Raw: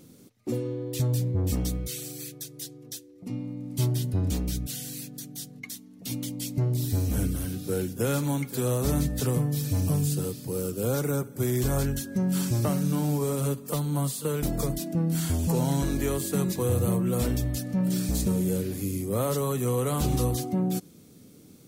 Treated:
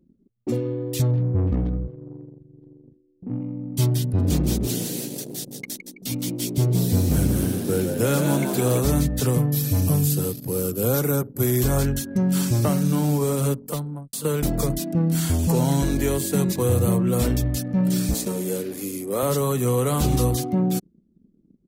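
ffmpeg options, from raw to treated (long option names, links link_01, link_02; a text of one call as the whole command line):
ffmpeg -i in.wav -filter_complex "[0:a]asettb=1/sr,asplit=3[link_01][link_02][link_03];[link_01]atrim=end=1.114[link_04];[link_02]atrim=start=1.11:end=3.41,asetpts=PTS-STARTPTS,afade=type=in:duration=0.004:curve=qsin,afade=type=out:start_time=2.296:duration=0.004:curve=qsin,adynamicsmooth=sensitivity=3:basefreq=680[link_05];[link_03]atrim=start=3.406[link_06];[link_04][link_05]acrossfade=duration=0.004:curve1=hsin:curve2=qsin[link_07];[link_07][link_06]acrossfade=duration=0.004:curve1=qsin:curve2=hsin,asplit=3[link_08][link_09][link_10];[link_08]afade=type=out:start_time=4.18:duration=0.02[link_11];[link_09]asplit=9[link_12][link_13][link_14][link_15][link_16][link_17][link_18][link_19][link_20];[link_13]adelay=164,afreqshift=57,volume=-6dB[link_21];[link_14]adelay=328,afreqshift=114,volume=-10.4dB[link_22];[link_15]adelay=492,afreqshift=171,volume=-14.9dB[link_23];[link_16]adelay=656,afreqshift=228,volume=-19.3dB[link_24];[link_17]adelay=820,afreqshift=285,volume=-23.7dB[link_25];[link_18]adelay=984,afreqshift=342,volume=-28.2dB[link_26];[link_19]adelay=1148,afreqshift=399,volume=-32.6dB[link_27];[link_20]adelay=1312,afreqshift=456,volume=-37.1dB[link_28];[link_12][link_21][link_22][link_23][link_24][link_25][link_26][link_27][link_28]amix=inputs=9:normalize=0,afade=type=in:start_time=4.18:duration=0.02,afade=type=out:start_time=8.79:duration=0.02[link_29];[link_10]afade=type=in:start_time=8.79:duration=0.02[link_30];[link_11][link_29][link_30]amix=inputs=3:normalize=0,asettb=1/sr,asplit=3[link_31][link_32][link_33];[link_31]atrim=end=9.384[link_34];[link_32]atrim=start=9.38:end=11.65,asetpts=PTS-STARTPTS,afade=type=in:duration=0.004:curve=qsin,afade=type=out:start_time=2.266:duration=0.004:curve=qsin,equalizer=frequency=12000:width=5.5:gain=12[link_35];[link_33]atrim=start=11.646[link_36];[link_34][link_35]acrossfade=duration=0.004:curve1=hsin:curve2=qsin[link_37];[link_37][link_36]acrossfade=duration=0.004:curve1=qsin:curve2=hsin,asettb=1/sr,asplit=3[link_38][link_39][link_40];[link_38]atrim=end=15.814[link_41];[link_39]atrim=start=15.81:end=16.51,asetpts=PTS-STARTPTS,afade=type=in:duration=0.004:curve=qsin,afade=type=out:start_time=0.696:duration=0.004:curve=qsin,bandreject=frequency=1200:width=7.7[link_42];[link_40]atrim=start=16.506[link_43];[link_41][link_42]acrossfade=duration=0.004:curve1=hsin:curve2=qsin[link_44];[link_44][link_43]acrossfade=duration=0.004:curve1=qsin:curve2=hsin,asettb=1/sr,asplit=3[link_45][link_46][link_47];[link_45]atrim=end=18.144[link_48];[link_46]atrim=start=18.14:end=19.23,asetpts=PTS-STARTPTS,afade=type=in:duration=0.004:curve=qsin,afade=type=out:start_time=1.086:duration=0.004:curve=qsin,highpass=290[link_49];[link_47]atrim=start=19.226[link_50];[link_48][link_49]acrossfade=duration=0.004:curve1=hsin:curve2=qsin[link_51];[link_51][link_50]acrossfade=duration=0.004:curve1=qsin:curve2=hsin,asplit=2[link_52][link_53];[link_52]atrim=end=14.13,asetpts=PTS-STARTPTS,afade=type=out:start_time=13.53:duration=0.6[link_54];[link_53]atrim=start=14.13,asetpts=PTS-STARTPTS,afade=type=in:duration=0.004:curve=hsin[link_55];[link_54][link_55]concat=n=2:v=0:a=1,anlmdn=0.398,volume=5dB" out.wav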